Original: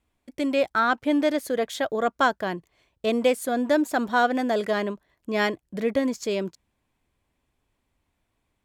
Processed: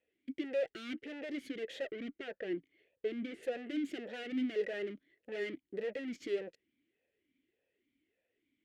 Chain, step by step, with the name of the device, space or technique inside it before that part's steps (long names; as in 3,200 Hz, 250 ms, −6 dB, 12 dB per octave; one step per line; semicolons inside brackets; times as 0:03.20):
talk box (tube saturation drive 38 dB, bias 0.75; formant filter swept between two vowels e-i 1.7 Hz)
0:01.90–0:03.43: low-pass filter 2,700 Hz 6 dB per octave
level +11.5 dB